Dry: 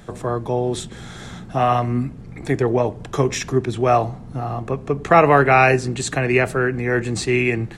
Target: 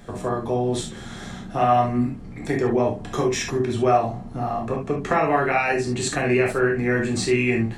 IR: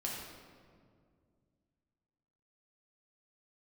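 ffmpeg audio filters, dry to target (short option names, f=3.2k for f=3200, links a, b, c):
-filter_complex "[0:a]acompressor=threshold=-16dB:ratio=6[a];[1:a]atrim=start_sample=2205,atrim=end_sample=3528[b];[a][b]afir=irnorm=-1:irlink=0"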